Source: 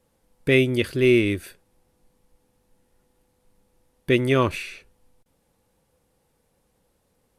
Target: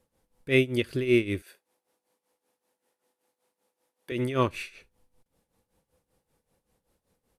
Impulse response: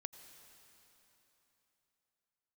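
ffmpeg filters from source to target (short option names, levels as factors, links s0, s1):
-filter_complex "[0:a]aecho=1:1:77:0.075,tremolo=f=5.2:d=0.79,asettb=1/sr,asplit=3[s0][s1][s2];[s0]atrim=end=1.424[s3];[s1]atrim=start=1.42:end=4.12,asetpts=PTS-STARTPTS,afade=t=in:d=0.004:c=qsin,afade=t=out:st=2.696:d=0.004:c=qsin,highpass=420[s4];[s2]atrim=start=4.116[s5];[s3][s4]acrossfade=d=0.004:c1=hsin:c2=qsin[s6];[s6][s5]acrossfade=d=0.004:c1=qsin:c2=hsin,volume=0.75"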